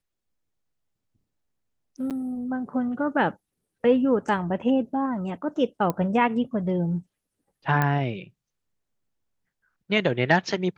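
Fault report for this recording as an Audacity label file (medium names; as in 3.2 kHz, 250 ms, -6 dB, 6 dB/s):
2.100000	2.110000	dropout 7.8 ms
5.900000	5.900000	pop -13 dBFS
7.820000	7.820000	pop -11 dBFS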